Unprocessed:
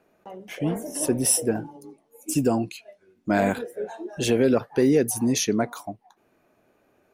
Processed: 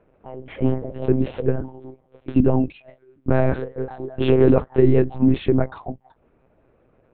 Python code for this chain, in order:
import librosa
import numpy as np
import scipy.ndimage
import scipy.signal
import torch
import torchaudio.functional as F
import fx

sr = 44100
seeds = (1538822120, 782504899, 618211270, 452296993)

y = fx.dead_time(x, sr, dead_ms=0.054, at=(1.34, 2.69))
y = fx.tilt_eq(y, sr, slope=-3.5)
y = fx.lpc_monotone(y, sr, seeds[0], pitch_hz=130.0, order=8)
y = fx.low_shelf(y, sr, hz=220.0, db=-5.5)
y = y * 10.0 ** (2.5 / 20.0)